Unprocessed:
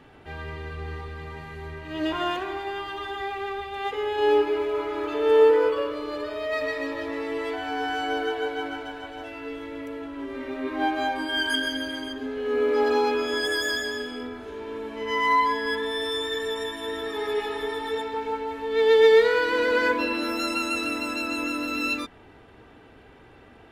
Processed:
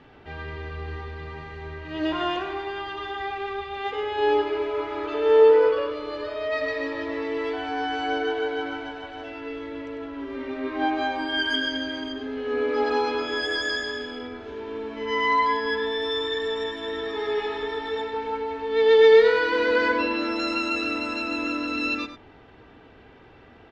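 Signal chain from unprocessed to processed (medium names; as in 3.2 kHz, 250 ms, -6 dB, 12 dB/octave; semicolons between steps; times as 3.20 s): low-pass 5.8 kHz 24 dB/octave; delay 99 ms -9.5 dB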